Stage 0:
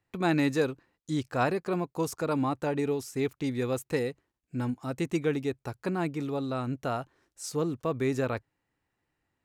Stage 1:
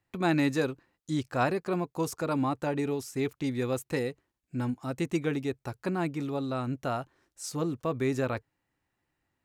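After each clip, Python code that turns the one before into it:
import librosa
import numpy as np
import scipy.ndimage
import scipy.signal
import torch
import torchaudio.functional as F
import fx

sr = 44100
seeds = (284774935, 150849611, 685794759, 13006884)

y = fx.notch(x, sr, hz=450.0, q=12.0)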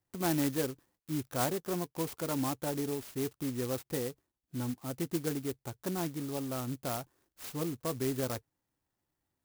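y = fx.clock_jitter(x, sr, seeds[0], jitter_ms=0.11)
y = F.gain(torch.from_numpy(y), -4.5).numpy()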